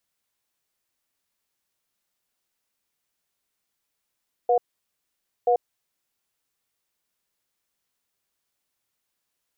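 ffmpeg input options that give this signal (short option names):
-f lavfi -i "aevalsrc='0.112*(sin(2*PI*487*t)+sin(2*PI*720*t))*clip(min(mod(t,0.98),0.09-mod(t,0.98))/0.005,0,1)':d=1.54:s=44100"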